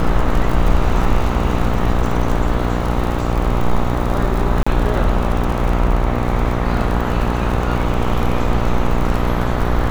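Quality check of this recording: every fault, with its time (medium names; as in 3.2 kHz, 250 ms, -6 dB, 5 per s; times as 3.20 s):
buzz 60 Hz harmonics 22 -20 dBFS
crackle 47 per s -21 dBFS
4.63–4.67 s: dropout 35 ms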